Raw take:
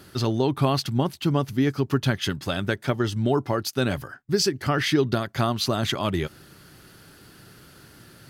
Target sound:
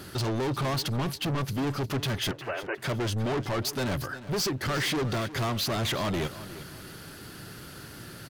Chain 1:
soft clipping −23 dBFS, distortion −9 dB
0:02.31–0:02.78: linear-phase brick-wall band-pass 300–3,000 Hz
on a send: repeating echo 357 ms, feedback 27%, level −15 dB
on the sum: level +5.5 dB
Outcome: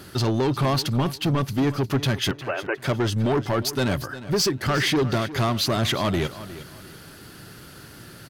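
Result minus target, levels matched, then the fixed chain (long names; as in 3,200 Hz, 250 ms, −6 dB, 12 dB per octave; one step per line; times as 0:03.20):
soft clipping: distortion −5 dB
soft clipping −32 dBFS, distortion −4 dB
0:02.31–0:02.78: linear-phase brick-wall band-pass 300–3,000 Hz
on a send: repeating echo 357 ms, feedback 27%, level −15 dB
on the sum: level +5.5 dB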